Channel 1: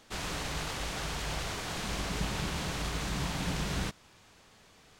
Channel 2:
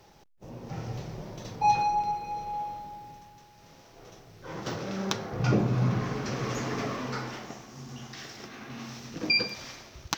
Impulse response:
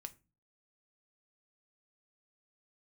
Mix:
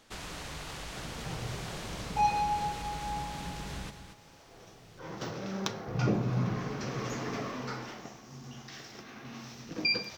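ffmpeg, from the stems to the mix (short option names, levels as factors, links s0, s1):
-filter_complex "[0:a]acompressor=threshold=0.0126:ratio=2.5,volume=0.794,asplit=2[s0][s1];[s1]volume=0.355[s2];[1:a]adelay=550,volume=0.501,asplit=2[s3][s4];[s4]volume=0.562[s5];[2:a]atrim=start_sample=2205[s6];[s5][s6]afir=irnorm=-1:irlink=0[s7];[s2]aecho=0:1:232:1[s8];[s0][s3][s7][s8]amix=inputs=4:normalize=0"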